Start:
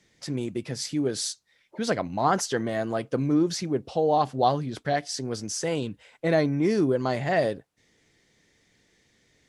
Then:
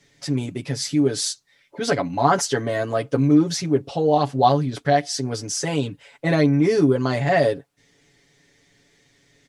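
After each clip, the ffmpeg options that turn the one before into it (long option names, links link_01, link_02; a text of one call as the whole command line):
ffmpeg -i in.wav -af "aecho=1:1:7.1:0.87,volume=3dB" out.wav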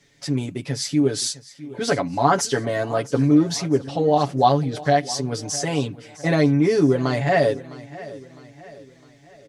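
ffmpeg -i in.wav -af "aecho=1:1:658|1316|1974|2632:0.126|0.0579|0.0266|0.0123" out.wav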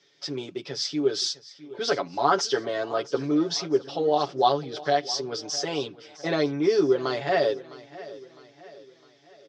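ffmpeg -i in.wav -af "highpass=250,equalizer=frequency=260:width_type=q:width=4:gain=-8,equalizer=frequency=370:width_type=q:width=4:gain=8,equalizer=frequency=1300:width_type=q:width=4:gain=5,equalizer=frequency=2000:width_type=q:width=4:gain=-3,equalizer=frequency=3400:width_type=q:width=4:gain=7,equalizer=frequency=5200:width_type=q:width=4:gain=8,lowpass=frequency=5900:width=0.5412,lowpass=frequency=5900:width=1.3066,volume=-5dB" out.wav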